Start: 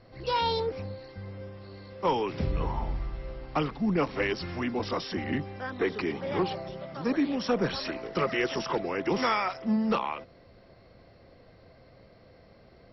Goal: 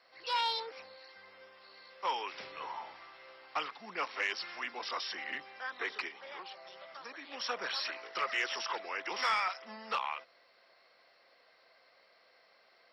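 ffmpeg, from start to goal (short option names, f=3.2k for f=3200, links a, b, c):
-filter_complex "[0:a]highpass=1.1k,asplit=3[a][b][c];[a]afade=t=out:st=6.07:d=0.02[d];[b]acompressor=threshold=-46dB:ratio=3,afade=t=in:st=6.07:d=0.02,afade=t=out:st=7.31:d=0.02[e];[c]afade=t=in:st=7.31:d=0.02[f];[d][e][f]amix=inputs=3:normalize=0,asoftclip=type=tanh:threshold=-20.5dB"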